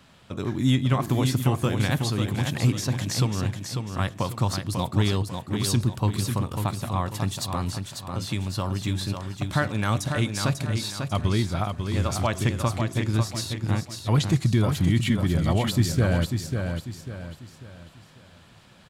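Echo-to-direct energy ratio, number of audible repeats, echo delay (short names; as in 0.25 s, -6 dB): -5.5 dB, 4, 0.545 s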